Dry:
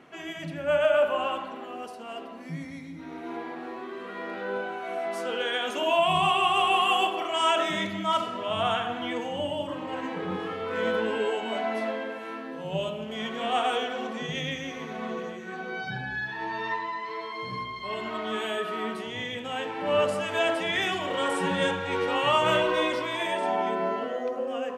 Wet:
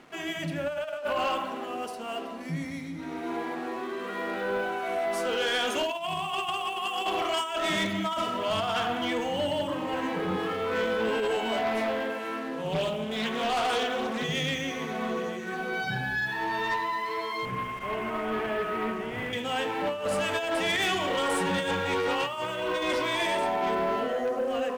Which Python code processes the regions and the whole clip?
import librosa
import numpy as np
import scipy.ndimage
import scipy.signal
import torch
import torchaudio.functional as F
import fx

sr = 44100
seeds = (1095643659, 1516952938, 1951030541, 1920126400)

y = fx.chain(x, sr, fx.clip_hard(threshold_db=-24.0),
    fx.doppler_dist(depth_ms=0.28), at=(11.57, 14.24))
y = fx.chain(y, sr, fx.cvsd(bps=16000),
    fx.air_absorb(metres=270.0), at=(17.45, 19.33))
y = fx.over_compress(y, sr, threshold_db=-27.0, ratio=-0.5)
y = fx.leveller(y, sr, passes=2)
y = fx.high_shelf(y, sr, hz=6200.0, db=4.5)
y = F.gain(torch.from_numpy(y), -5.5).numpy()